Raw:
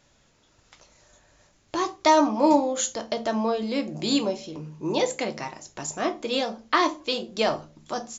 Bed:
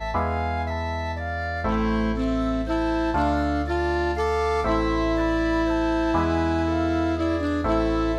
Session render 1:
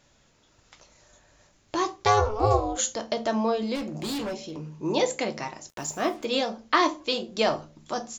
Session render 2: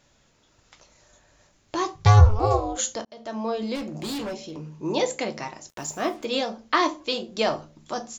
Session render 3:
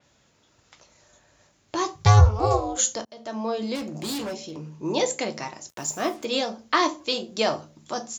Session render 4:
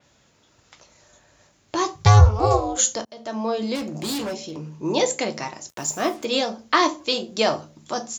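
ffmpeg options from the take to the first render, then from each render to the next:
-filter_complex "[0:a]asplit=3[s0][s1][s2];[s0]afade=t=out:st=2.04:d=0.02[s3];[s1]aeval=exprs='val(0)*sin(2*PI*210*n/s)':c=same,afade=t=in:st=2.04:d=0.02,afade=t=out:st=2.77:d=0.02[s4];[s2]afade=t=in:st=2.77:d=0.02[s5];[s3][s4][s5]amix=inputs=3:normalize=0,asettb=1/sr,asplit=3[s6][s7][s8];[s6]atrim=end=3.754[s9];[s7]atrim=start=3.75:end=4.74,asetpts=PTS-STARTPTS,afade=t=in:d=0.004:c=qsin,afade=t=out:st=0.986:d=0.004:c=qsin,asoftclip=type=hard:threshold=0.0376[s10];[s8]atrim=start=4.736[s11];[s9][s10]acrossfade=d=0.004:c1=hsin:c2=qsin[s12];[s12][s11]acrossfade=d=0.004:c1=qsin:c2=hsin,asettb=1/sr,asplit=3[s13][s14][s15];[s13]atrim=end=5.694[s16];[s14]atrim=start=5.69:end=6.25,asetpts=PTS-STARTPTS,afade=t=in:d=0.004:c=qsin,afade=t=out:st=0.556:d=0.004:c=qsin,acrusher=bits=7:mix=0:aa=0.5[s17];[s15]atrim=start=6.246[s18];[s16][s17]acrossfade=d=0.004:c1=hsin:c2=qsin[s19];[s19][s18]acrossfade=d=0.004:c1=qsin:c2=hsin"
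-filter_complex "[0:a]asettb=1/sr,asplit=3[s0][s1][s2];[s0]atrim=end=1.954[s3];[s1]atrim=start=1.95:end=2.39,asetpts=PTS-STARTPTS,afade=t=in:d=0.004:c=qsin,afade=t=out:st=0.436:d=0.004:c=qsin,lowshelf=f=210:t=q:w=3:g=14[s4];[s2]atrim=start=2.386[s5];[s3][s4]acrossfade=d=0.004:c1=hsin:c2=qsin[s6];[s6][s5]acrossfade=d=0.004:c1=qsin:c2=hsin,asplit=2[s7][s8];[s7]atrim=end=3.05,asetpts=PTS-STARTPTS,afade=t=out:st=3.046:d=0.004:c=hsin[s9];[s8]atrim=start=3.05,asetpts=PTS-STARTPTS,afade=t=in:d=0.6[s10];[s9][s10]concat=n=2:v=0:a=1"
-af "highpass=63,adynamicequalizer=threshold=0.00708:dfrequency=4800:dqfactor=0.7:tfrequency=4800:tqfactor=0.7:attack=5:release=100:ratio=0.375:range=3:mode=boostabove:tftype=highshelf"
-af "volume=1.41,alimiter=limit=0.708:level=0:latency=1"

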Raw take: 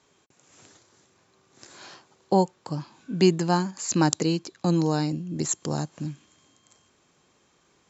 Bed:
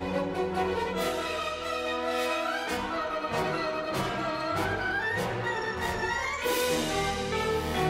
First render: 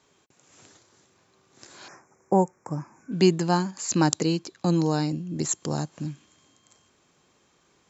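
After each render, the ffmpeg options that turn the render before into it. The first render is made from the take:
-filter_complex "[0:a]asettb=1/sr,asplit=3[s0][s1][s2];[s0]atrim=end=1.884[s3];[s1]atrim=start=1.88:end=3.12,asetpts=PTS-STARTPTS,afade=t=in:d=0.004:c=qsin,afade=t=out:st=1.236:d=0.004:c=qsin,asuperstop=centerf=3600:order=12:qfactor=1.2[s4];[s2]atrim=start=3.116[s5];[s3][s4]acrossfade=d=0.004:c1=hsin:c2=qsin[s6];[s6][s5]acrossfade=d=0.004:c1=qsin:c2=hsin"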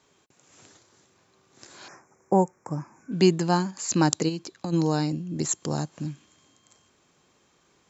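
-filter_complex "[0:a]asplit=3[s0][s1][s2];[s0]afade=t=out:st=4.28:d=0.02[s3];[s1]acompressor=threshold=0.0501:ratio=6:attack=3.2:release=140:knee=1:detection=peak,afade=t=in:st=4.28:d=0.02,afade=t=out:st=4.72:d=0.02[s4];[s2]afade=t=in:st=4.72:d=0.02[s5];[s3][s4][s5]amix=inputs=3:normalize=0"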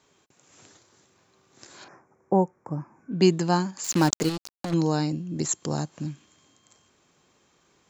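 -filter_complex "[0:a]asettb=1/sr,asplit=3[s0][s1][s2];[s0]atrim=end=1.844[s3];[s1]atrim=start=1.84:end=3.22,asetpts=PTS-STARTPTS,afade=t=in:d=0.004:c=qsin,afade=t=out:st=1.376:d=0.004:c=qsin,lowpass=f=1200:p=1[s4];[s2]atrim=start=3.216[s5];[s3][s4]acrossfade=d=0.004:c1=hsin:c2=qsin[s6];[s6][s5]acrossfade=d=0.004:c1=qsin:c2=hsin,asettb=1/sr,asplit=3[s7][s8][s9];[s7]atrim=end=3.844[s10];[s8]atrim=start=3.84:end=4.74,asetpts=PTS-STARTPTS,afade=t=in:d=0.004:c=qsin,afade=t=out:st=0.896:d=0.004:c=qsin,acrusher=bits=4:mix=0:aa=0.5[s11];[s9]atrim=start=4.736[s12];[s10][s11]acrossfade=d=0.004:c1=hsin:c2=qsin[s13];[s13][s12]acrossfade=d=0.004:c1=qsin:c2=hsin"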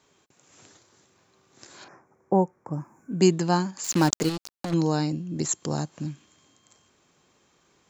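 -filter_complex "[0:a]asettb=1/sr,asplit=3[s0][s1][s2];[s0]atrim=end=2.734[s3];[s1]atrim=start=2.73:end=3.28,asetpts=PTS-STARTPTS,afade=t=in:d=0.004:c=qsin,afade=t=out:st=0.546:d=0.004:c=qsin,highshelf=f=6200:t=q:w=1.5:g=13.5[s4];[s2]atrim=start=3.276[s5];[s3][s4]acrossfade=d=0.004:c1=hsin:c2=qsin[s6];[s6][s5]acrossfade=d=0.004:c1=qsin:c2=hsin"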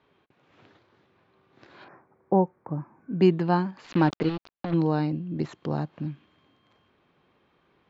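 -af "lowpass=f=3700:w=0.5412,lowpass=f=3700:w=1.3066,aemphasis=mode=reproduction:type=50kf"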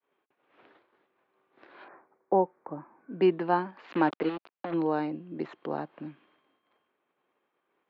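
-filter_complex "[0:a]agate=range=0.0224:threshold=0.00126:ratio=3:detection=peak,acrossover=split=270 3400:gain=0.0794 1 0.0631[s0][s1][s2];[s0][s1][s2]amix=inputs=3:normalize=0"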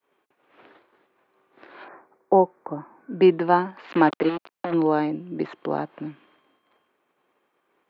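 -af "volume=2.24"

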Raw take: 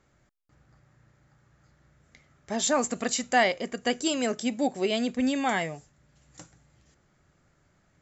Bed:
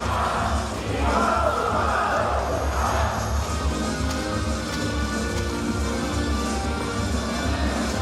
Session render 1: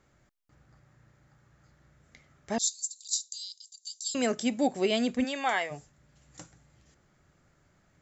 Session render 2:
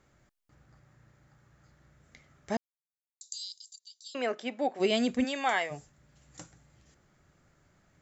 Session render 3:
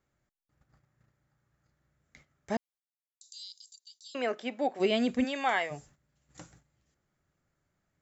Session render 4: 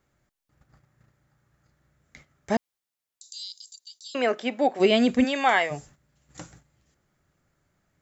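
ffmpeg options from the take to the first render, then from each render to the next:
-filter_complex "[0:a]asettb=1/sr,asplit=3[s0][s1][s2];[s0]atrim=end=2.584[s3];[s1]atrim=start=2.58:end=4.15,asetpts=PTS-STARTPTS,afade=t=in:d=0.004:c=qsin,afade=t=out:st=1.566:d=0.004:c=qsin,asuperpass=centerf=5600:order=12:qfactor=1.3[s4];[s2]atrim=start=4.146[s5];[s3][s4]acrossfade=d=0.004:c1=hsin:c2=qsin[s6];[s6][s5]acrossfade=d=0.004:c1=qsin:c2=hsin,asplit=3[s7][s8][s9];[s7]afade=t=out:st=5.23:d=0.02[s10];[s8]highpass=530,lowpass=6100,afade=t=in:st=5.23:d=0.02,afade=t=out:st=5.7:d=0.02[s11];[s9]afade=t=in:st=5.7:d=0.02[s12];[s10][s11][s12]amix=inputs=3:normalize=0"
-filter_complex "[0:a]asplit=3[s0][s1][s2];[s0]afade=t=out:st=3.78:d=0.02[s3];[s1]highpass=430,lowpass=2800,afade=t=in:st=3.78:d=0.02,afade=t=out:st=4.79:d=0.02[s4];[s2]afade=t=in:st=4.79:d=0.02[s5];[s3][s4][s5]amix=inputs=3:normalize=0,asplit=3[s6][s7][s8];[s6]atrim=end=2.57,asetpts=PTS-STARTPTS,afade=t=out:st=2.566:d=0.004:c=hsin[s9];[s7]atrim=start=2.57:end=3.21,asetpts=PTS-STARTPTS,volume=0[s10];[s8]atrim=start=3.21,asetpts=PTS-STARTPTS,afade=t=in:d=0.004:c=hsin[s11];[s9][s10][s11]concat=n=3:v=0:a=1"
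-filter_complex "[0:a]agate=range=0.224:threshold=0.00126:ratio=16:detection=peak,acrossover=split=4000[s0][s1];[s1]acompressor=threshold=0.00316:ratio=4:attack=1:release=60[s2];[s0][s2]amix=inputs=2:normalize=0"
-af "volume=2.37"

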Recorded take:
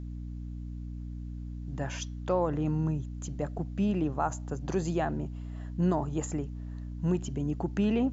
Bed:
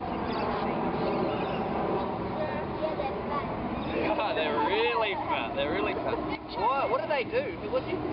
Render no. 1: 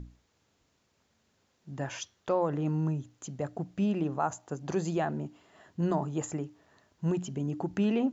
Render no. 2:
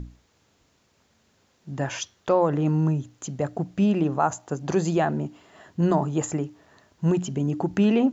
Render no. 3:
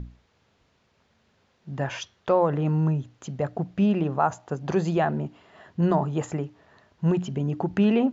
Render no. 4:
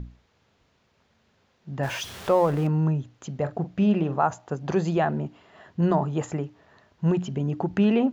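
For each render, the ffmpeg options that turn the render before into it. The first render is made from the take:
-af "bandreject=f=60:t=h:w=6,bandreject=f=120:t=h:w=6,bandreject=f=180:t=h:w=6,bandreject=f=240:t=h:w=6,bandreject=f=300:t=h:w=6"
-af "volume=2.37"
-af "lowpass=4100,equalizer=f=300:w=4.4:g=-5.5"
-filter_complex "[0:a]asettb=1/sr,asplit=3[s0][s1][s2];[s0]atrim=end=1.834[s3];[s1]atrim=start=1.83:end=2.67,asetpts=PTS-STARTPTS,afade=t=in:d=0.004:c=qsin,afade=t=out:st=0.836:d=0.004:c=qsin,aeval=exprs='val(0)+0.5*0.0178*sgn(val(0))':c=same[s4];[s2]atrim=start=2.666[s5];[s3][s4]acrossfade=d=0.004:c1=hsin:c2=qsin[s6];[s6][s5]acrossfade=d=0.004:c1=qsin:c2=hsin,asettb=1/sr,asplit=3[s7][s8][s9];[s7]atrim=end=3.314[s10];[s8]atrim=start=3.31:end=4.23,asetpts=PTS-STARTPTS,afade=t=in:d=0.004:c=qsin,afade=t=out:st=0.916:d=0.004:c=qsin,asplit=2[s11][s12];[s12]adelay=43,volume=0.237[s13];[s11][s13]amix=inputs=2:normalize=0,atrim=end_sample=40572[s14];[s9]atrim=start=4.226[s15];[s10][s14]acrossfade=d=0.004:c1=hsin:c2=qsin[s16];[s16][s15]acrossfade=d=0.004:c1=qsin:c2=hsin"

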